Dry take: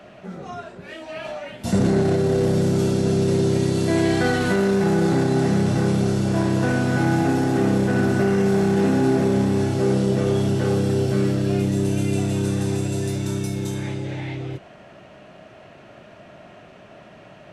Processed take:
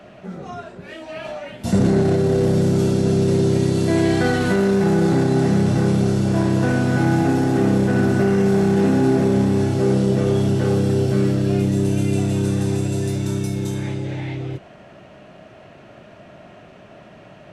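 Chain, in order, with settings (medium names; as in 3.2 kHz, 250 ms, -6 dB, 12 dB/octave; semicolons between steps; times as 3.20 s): bass shelf 460 Hz +3 dB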